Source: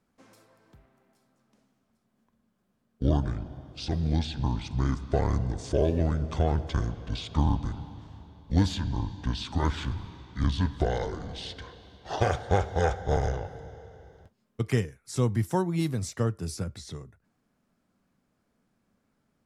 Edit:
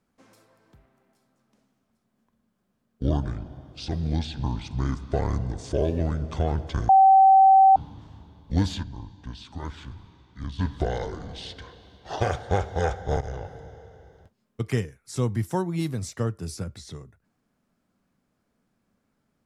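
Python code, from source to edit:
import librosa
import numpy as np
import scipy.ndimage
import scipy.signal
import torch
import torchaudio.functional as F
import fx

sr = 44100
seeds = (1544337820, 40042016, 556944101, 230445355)

y = fx.edit(x, sr, fx.bleep(start_s=6.89, length_s=0.87, hz=771.0, db=-11.0),
    fx.clip_gain(start_s=8.83, length_s=1.76, db=-8.5),
    fx.fade_in_from(start_s=13.21, length_s=0.29, curve='qsin', floor_db=-14.0), tone=tone)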